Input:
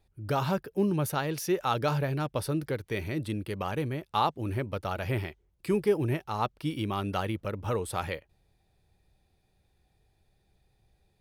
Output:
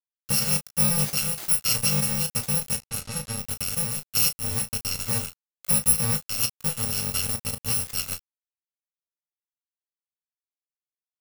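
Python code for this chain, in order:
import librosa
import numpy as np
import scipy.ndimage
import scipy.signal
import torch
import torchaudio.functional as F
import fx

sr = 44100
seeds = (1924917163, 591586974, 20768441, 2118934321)

p1 = fx.bit_reversed(x, sr, seeds[0], block=128)
p2 = np.where(np.abs(p1) >= 10.0 ** (-31.5 / 20.0), p1, 0.0)
p3 = p2 + fx.room_early_taps(p2, sr, ms=(20, 34), db=(-11.0, -10.5), dry=0)
p4 = fx.env_lowpass(p3, sr, base_hz=1500.0, full_db=-27.5, at=(2.78, 3.37), fade=0.02)
y = p4 * 10.0 ** (4.0 / 20.0)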